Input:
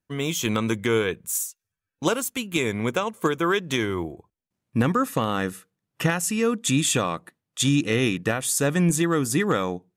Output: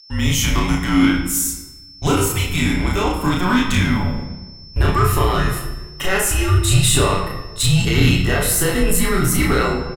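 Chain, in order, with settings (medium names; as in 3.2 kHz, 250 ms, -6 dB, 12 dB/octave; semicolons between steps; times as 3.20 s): pitch bend over the whole clip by +3.5 st starting unshifted; in parallel at -8 dB: wavefolder -20 dBFS; on the sum: doubling 33 ms -2 dB; transient shaper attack -1 dB, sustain +5 dB; whistle 5.5 kHz -43 dBFS; on a send at -1.5 dB: reverberation RT60 1.2 s, pre-delay 7 ms; on the sum: frequency shift -180 Hz; trim +1.5 dB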